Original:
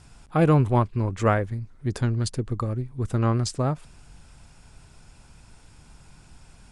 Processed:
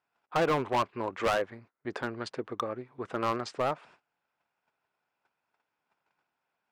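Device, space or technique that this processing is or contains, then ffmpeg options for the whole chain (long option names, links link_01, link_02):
walkie-talkie: -af "highpass=540,lowpass=2300,asoftclip=type=hard:threshold=-26.5dB,agate=range=-25dB:threshold=-58dB:ratio=16:detection=peak,volume=4dB"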